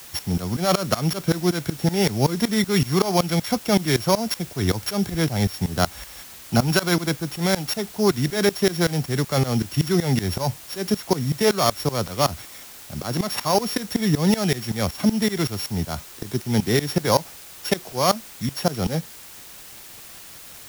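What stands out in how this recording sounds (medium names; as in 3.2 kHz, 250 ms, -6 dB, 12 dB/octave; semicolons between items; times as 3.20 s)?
a buzz of ramps at a fixed pitch in blocks of 8 samples; tremolo saw up 5.3 Hz, depth 95%; a quantiser's noise floor 8-bit, dither triangular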